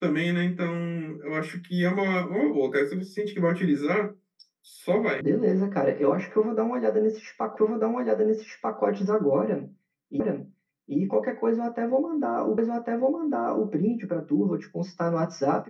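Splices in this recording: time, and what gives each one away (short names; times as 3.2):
5.21 sound cut off
7.57 repeat of the last 1.24 s
10.2 repeat of the last 0.77 s
12.58 repeat of the last 1.1 s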